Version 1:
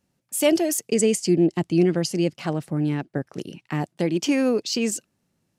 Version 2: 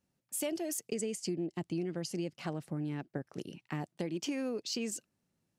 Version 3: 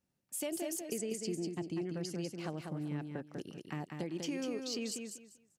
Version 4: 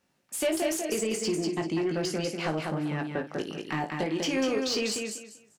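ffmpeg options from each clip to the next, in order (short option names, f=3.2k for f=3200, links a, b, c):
-af "acompressor=threshold=-24dB:ratio=6,volume=-8.5dB"
-af "aecho=1:1:195|390|585:0.562|0.124|0.0272,volume=-3dB"
-filter_complex "[0:a]aecho=1:1:19|56:0.531|0.237,asplit=2[a][b];[b]highpass=f=720:p=1,volume=14dB,asoftclip=type=tanh:threshold=-24.5dB[c];[a][c]amix=inputs=2:normalize=0,lowpass=f=3.2k:p=1,volume=-6dB,volume=7.5dB"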